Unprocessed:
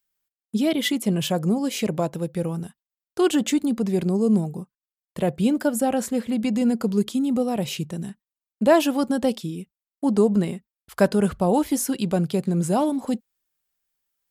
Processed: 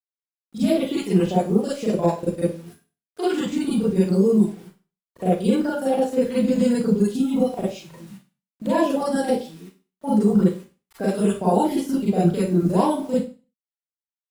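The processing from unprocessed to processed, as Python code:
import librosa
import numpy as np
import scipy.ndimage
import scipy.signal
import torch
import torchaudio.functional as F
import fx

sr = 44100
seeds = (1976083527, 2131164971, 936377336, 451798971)

y = fx.spec_quant(x, sr, step_db=30)
y = fx.high_shelf(y, sr, hz=4500.0, db=-5.0)
y = fx.level_steps(y, sr, step_db=24)
y = fx.harmonic_tremolo(y, sr, hz=9.9, depth_pct=70, crossover_hz=670.0)
y = fx.quant_dither(y, sr, seeds[0], bits=10, dither='none')
y = fx.rev_schroeder(y, sr, rt60_s=0.34, comb_ms=33, drr_db=-9.0)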